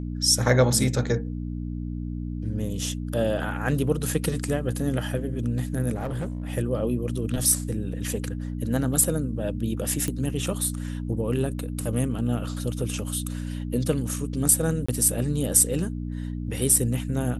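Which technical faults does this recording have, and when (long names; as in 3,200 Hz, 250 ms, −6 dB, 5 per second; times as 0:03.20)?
mains hum 60 Hz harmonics 5 −31 dBFS
0:05.94–0:06.52: clipping −25.5 dBFS
0:10.08: click −14 dBFS
0:14.86–0:14.88: drop-out 25 ms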